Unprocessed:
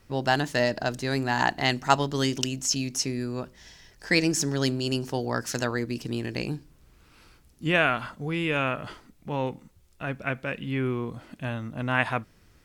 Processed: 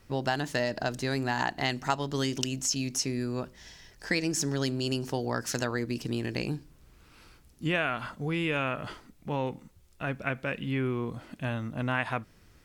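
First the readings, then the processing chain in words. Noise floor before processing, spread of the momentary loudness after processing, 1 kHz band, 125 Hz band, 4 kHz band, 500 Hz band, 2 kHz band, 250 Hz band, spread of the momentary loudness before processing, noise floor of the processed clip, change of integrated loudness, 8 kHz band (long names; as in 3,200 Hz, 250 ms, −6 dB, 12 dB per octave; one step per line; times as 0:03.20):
−58 dBFS, 8 LU, −5.0 dB, −2.5 dB, −4.0 dB, −3.5 dB, −4.5 dB, −3.0 dB, 12 LU, −58 dBFS, −3.5 dB, −2.5 dB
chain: downward compressor 3 to 1, threshold −26 dBFS, peak gain reduction 9.5 dB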